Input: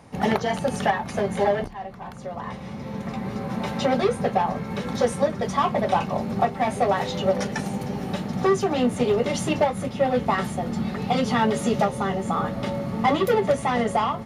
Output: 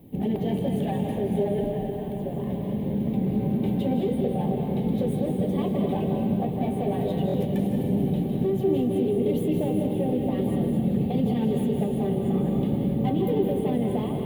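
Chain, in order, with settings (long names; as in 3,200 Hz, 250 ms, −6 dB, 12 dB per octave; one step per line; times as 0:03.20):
phase distortion by the signal itself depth 0.084 ms
notch filter 1,400 Hz, Q 6.6
in parallel at +1 dB: speech leveller within 5 dB
on the sum: tuned comb filter 770 Hz, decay 0.41 s, mix 70%
bit-depth reduction 10 bits, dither none
drawn EQ curve 100 Hz 0 dB, 330 Hz +6 dB, 1,300 Hz −24 dB, 3,300 Hz −8 dB, 5,600 Hz −29 dB, 13,000 Hz +2 dB
feedback delay with all-pass diffusion 477 ms, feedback 75%, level −12 dB
brickwall limiter −21.5 dBFS, peak gain reduction 8 dB
on a send at −2 dB: convolution reverb RT60 1.1 s, pre-delay 153 ms
on the sum: buffer that repeats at 0:07.27, samples 1,024, times 2
level +3 dB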